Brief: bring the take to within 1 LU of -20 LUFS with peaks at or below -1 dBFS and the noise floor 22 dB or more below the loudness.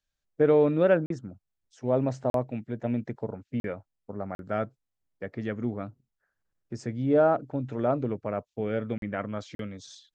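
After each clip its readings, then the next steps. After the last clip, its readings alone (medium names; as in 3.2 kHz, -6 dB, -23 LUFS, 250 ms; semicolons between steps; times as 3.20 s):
dropouts 6; longest dropout 42 ms; loudness -28.5 LUFS; peak level -11.0 dBFS; loudness target -20.0 LUFS
-> interpolate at 1.06/2.30/3.60/4.35/8.98/9.55 s, 42 ms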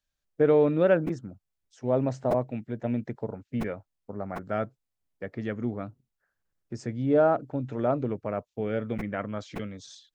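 dropouts 0; loudness -28.5 LUFS; peak level -11.0 dBFS; loudness target -20.0 LUFS
-> trim +8.5 dB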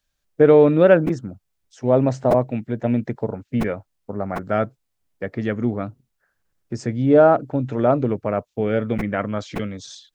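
loudness -20.0 LUFS; peak level -2.5 dBFS; noise floor -75 dBFS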